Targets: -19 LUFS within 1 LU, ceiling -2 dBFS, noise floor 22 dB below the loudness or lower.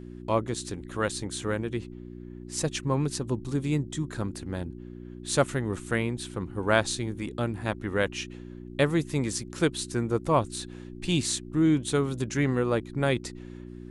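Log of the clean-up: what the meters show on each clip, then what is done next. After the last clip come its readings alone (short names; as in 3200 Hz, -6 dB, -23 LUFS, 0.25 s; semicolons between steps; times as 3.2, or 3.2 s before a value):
hum 60 Hz; harmonics up to 360 Hz; hum level -39 dBFS; loudness -29.0 LUFS; peak -8.5 dBFS; loudness target -19.0 LUFS
-> de-hum 60 Hz, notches 6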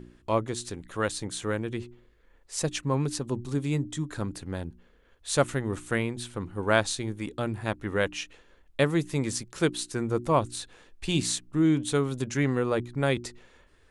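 hum none; loudness -29.0 LUFS; peak -8.5 dBFS; loudness target -19.0 LUFS
-> gain +10 dB; limiter -2 dBFS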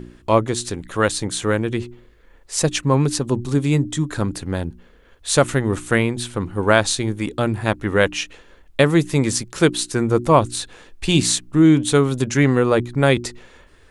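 loudness -19.5 LUFS; peak -2.0 dBFS; noise floor -50 dBFS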